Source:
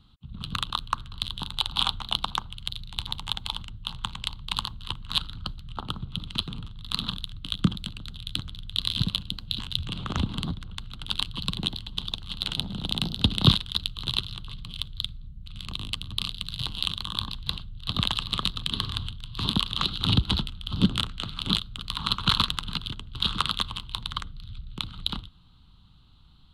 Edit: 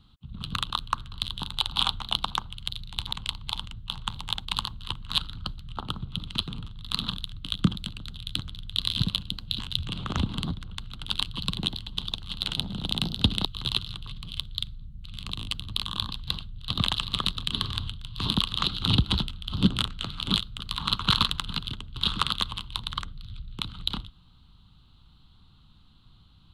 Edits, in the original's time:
3.13–3.44 swap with 4.11–4.45
13.45–13.87 cut
16.22–16.99 cut

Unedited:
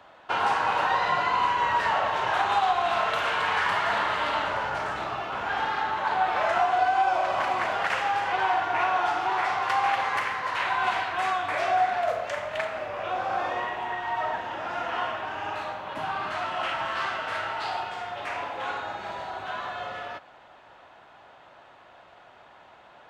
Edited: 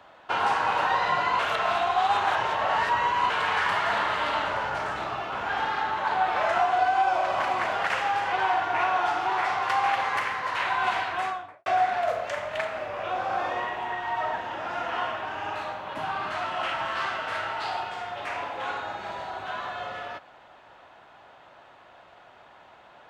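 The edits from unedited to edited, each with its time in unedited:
1.39–3.3 reverse
11.1–11.66 studio fade out

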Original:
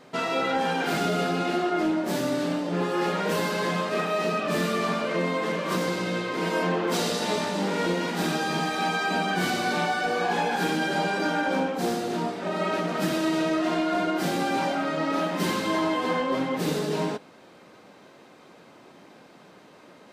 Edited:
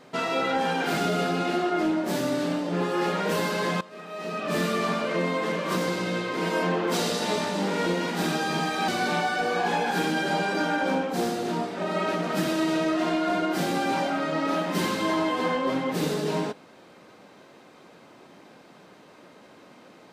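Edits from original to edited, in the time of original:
3.81–4.57 fade in quadratic, from -18 dB
8.88–9.53 cut

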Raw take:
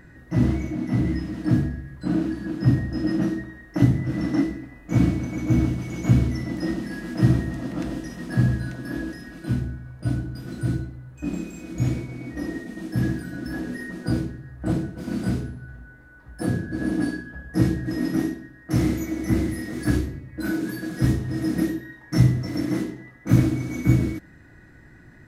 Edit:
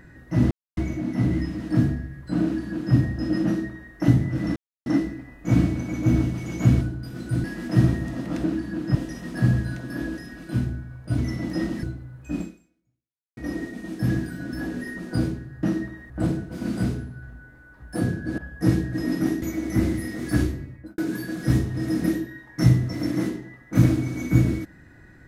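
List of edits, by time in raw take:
0.51 insert silence 0.26 s
2.17–2.68 copy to 7.9
3.19–3.66 copy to 14.56
4.3 insert silence 0.30 s
6.25–6.9 swap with 10.13–10.76
11.33–12.3 fade out exponential
16.84–17.31 cut
18.35–18.96 cut
20.23–20.52 studio fade out

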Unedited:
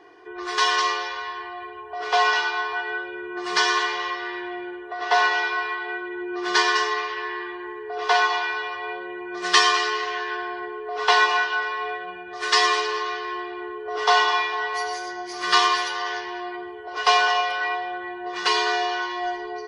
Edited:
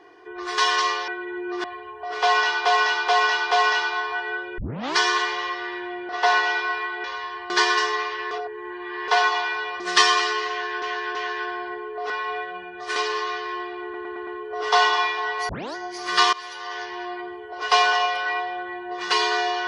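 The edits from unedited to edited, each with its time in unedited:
1.08–1.54 swap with 5.92–6.48
2.12–2.55 loop, 4 plays
3.19 tape start 0.38 s
4.7–4.97 cut
7.29–8.06 reverse
8.78–9.37 cut
10.06–10.39 loop, 3 plays
11.01–11.63 cut
12.49–12.75 cut
13.62 stutter 0.11 s, 5 plays
14.84 tape start 0.26 s
15.68–16.37 fade in linear, from -19.5 dB

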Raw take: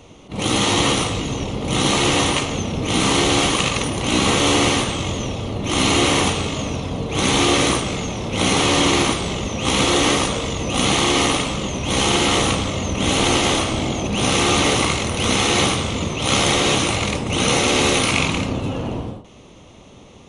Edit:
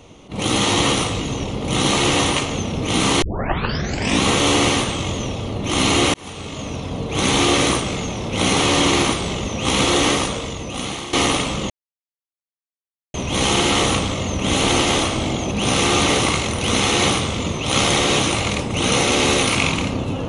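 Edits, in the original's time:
3.22 tape start 1.01 s
6.14–7.31 fade in equal-power
10.03–11.13 fade out linear, to -15.5 dB
11.7 insert silence 1.44 s

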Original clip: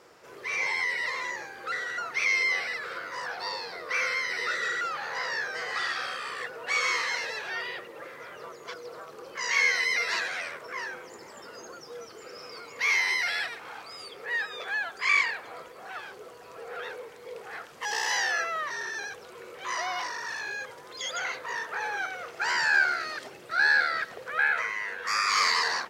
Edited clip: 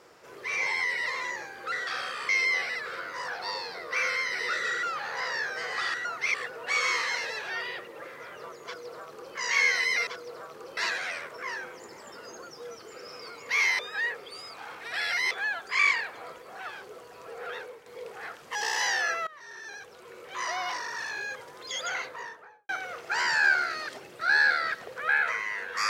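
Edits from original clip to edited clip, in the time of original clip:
1.87–2.27 swap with 5.92–6.34
8.65–9.35 copy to 10.07
13.09–14.61 reverse
16.84–17.16 fade out, to -7.5 dB
18.57–20.19 fade in equal-power, from -20.5 dB
21.22–21.99 studio fade out

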